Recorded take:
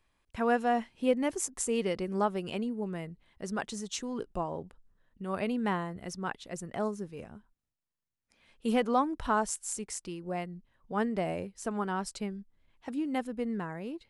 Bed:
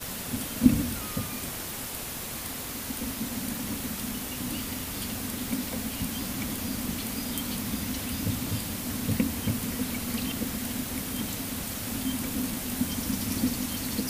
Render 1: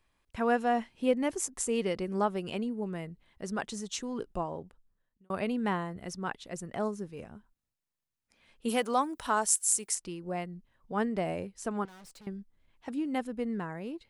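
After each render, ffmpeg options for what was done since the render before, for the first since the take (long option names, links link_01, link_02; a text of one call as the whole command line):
ffmpeg -i in.wav -filter_complex "[0:a]asplit=3[link_01][link_02][link_03];[link_01]afade=type=out:start_time=8.68:duration=0.02[link_04];[link_02]aemphasis=mode=production:type=bsi,afade=type=in:start_time=8.68:duration=0.02,afade=type=out:start_time=9.94:duration=0.02[link_05];[link_03]afade=type=in:start_time=9.94:duration=0.02[link_06];[link_04][link_05][link_06]amix=inputs=3:normalize=0,asettb=1/sr,asplit=3[link_07][link_08][link_09];[link_07]atrim=end=11.854[link_10];[link_08]atrim=start=11.85:end=12.27,asetpts=PTS-STARTPTS,afade=type=in:duration=0.004:curve=qsin,afade=type=out:start_time=0.416:duration=0.004:curve=qsin,aeval=exprs='(tanh(355*val(0)+0.4)-tanh(0.4))/355':channel_layout=same[link_11];[link_09]atrim=start=12.266[link_12];[link_10][link_11]acrossfade=duration=0.004:curve1=hsin:curve2=qsin[link_13];[link_13][link_12]acrossfade=duration=0.004:curve1=qsin:curve2=hsin,asplit=2[link_14][link_15];[link_14]atrim=end=5.3,asetpts=PTS-STARTPTS,afade=type=out:start_time=4.4:duration=0.9[link_16];[link_15]atrim=start=5.3,asetpts=PTS-STARTPTS,afade=type=in:duration=0.004:curve=hsin[link_17];[link_16][link_17]concat=n=2:v=0:a=1" out.wav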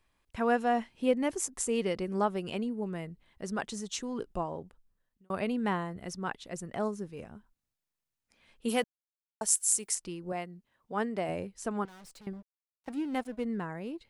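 ffmpeg -i in.wav -filter_complex "[0:a]asettb=1/sr,asplit=3[link_01][link_02][link_03];[link_01]atrim=end=10.324[link_04];[link_02]atrim=start=10.32:end=11.29,asetpts=PTS-STARTPTS,afade=type=in:duration=0.004:curve=qsin,afade=type=out:start_time=0.966:duration=0.004:curve=qsin,highpass=frequency=250:poles=1[link_05];[link_03]atrim=start=11.286[link_06];[link_04][link_05]acrossfade=duration=0.004:curve1=hsin:curve2=qsin[link_07];[link_07][link_06]acrossfade=duration=0.004:curve1=qsin:curve2=hsin,asettb=1/sr,asplit=3[link_08][link_09][link_10];[link_08]atrim=end=12.334[link_11];[link_09]atrim=start=12.33:end=13.44,asetpts=PTS-STARTPTS,afade=type=in:duration=0.004:curve=qsin,afade=type=out:start_time=1.106:duration=0.004:curve=qsin,aeval=exprs='sgn(val(0))*max(abs(val(0))-0.00355,0)':channel_layout=same[link_12];[link_10]atrim=start=13.436[link_13];[link_11][link_12]acrossfade=duration=0.004:curve1=hsin:curve2=qsin[link_14];[link_14][link_13]acrossfade=duration=0.004:curve1=qsin:curve2=hsin,asplit=3[link_15][link_16][link_17];[link_15]atrim=end=8.84,asetpts=PTS-STARTPTS,afade=type=out:start_time=8.836:duration=0.004:curve=hsin[link_18];[link_16]atrim=start=8.84:end=9.41,asetpts=PTS-STARTPTS,volume=0[link_19];[link_17]atrim=start=9.41,asetpts=PTS-STARTPTS,afade=type=in:duration=0.004:curve=hsin[link_20];[link_18][link_19][link_20]concat=n=3:v=0:a=1" out.wav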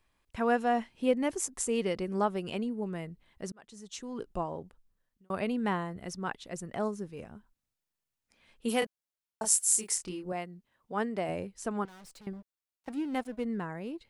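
ffmpeg -i in.wav -filter_complex "[0:a]asettb=1/sr,asplit=3[link_01][link_02][link_03];[link_01]atrim=end=8.794[link_04];[link_02]atrim=start=8.79:end=10.26,asetpts=PTS-STARTPTS,afade=type=in:duration=0.004:curve=qsin,afade=type=out:start_time=1.466:duration=0.004:curve=qsin,asplit=2[link_05][link_06];[link_06]adelay=27,volume=-4dB[link_07];[link_05][link_07]amix=inputs=2:normalize=0,atrim=end_sample=64827[link_08];[link_03]atrim=start=10.256[link_09];[link_04][link_08]acrossfade=duration=0.004:curve1=hsin:curve2=qsin[link_10];[link_10][link_09]acrossfade=duration=0.004:curve1=qsin:curve2=hsin,asplit=2[link_11][link_12];[link_11]atrim=end=3.52,asetpts=PTS-STARTPTS,afade=type=out:start_time=3.516:duration=0.004:curve=hsin[link_13];[link_12]atrim=start=3.52,asetpts=PTS-STARTPTS,afade=type=in:duration=0.87[link_14];[link_13][link_14]concat=n=2:v=0:a=1" out.wav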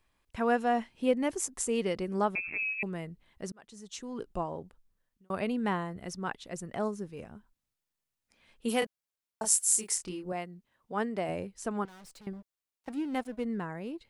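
ffmpeg -i in.wav -filter_complex "[0:a]asettb=1/sr,asplit=3[link_01][link_02][link_03];[link_01]atrim=end=2.354[link_04];[link_02]atrim=start=2.35:end=2.83,asetpts=PTS-STARTPTS,afade=type=in:duration=0.004:curve=qsin,afade=type=out:start_time=0.476:duration=0.004:curve=qsin,lowpass=frequency=2400:width_type=q:width=0.5098,lowpass=frequency=2400:width_type=q:width=0.6013,lowpass=frequency=2400:width_type=q:width=0.9,lowpass=frequency=2400:width_type=q:width=2.563,afreqshift=-2800[link_05];[link_03]atrim=start=2.826[link_06];[link_04][link_05]acrossfade=duration=0.004:curve1=hsin:curve2=qsin[link_07];[link_07][link_06]acrossfade=duration=0.004:curve1=qsin:curve2=hsin" out.wav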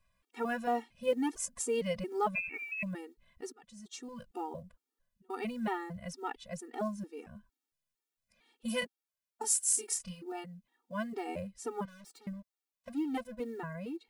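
ffmpeg -i in.wav -af "acrusher=bits=9:mode=log:mix=0:aa=0.000001,afftfilt=real='re*gt(sin(2*PI*2.2*pts/sr)*(1-2*mod(floor(b*sr/1024/240),2)),0)':imag='im*gt(sin(2*PI*2.2*pts/sr)*(1-2*mod(floor(b*sr/1024/240),2)),0)':win_size=1024:overlap=0.75" out.wav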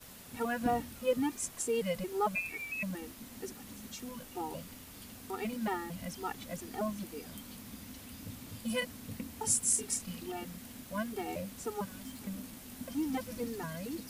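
ffmpeg -i in.wav -i bed.wav -filter_complex "[1:a]volume=-16dB[link_01];[0:a][link_01]amix=inputs=2:normalize=0" out.wav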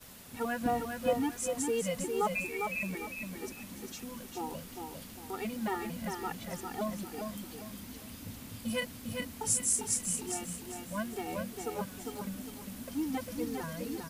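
ffmpeg -i in.wav -af "aecho=1:1:402|804|1206|1608:0.562|0.186|0.0612|0.0202" out.wav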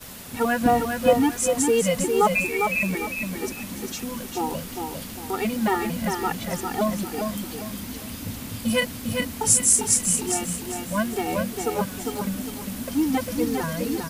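ffmpeg -i in.wav -af "volume=11.5dB" out.wav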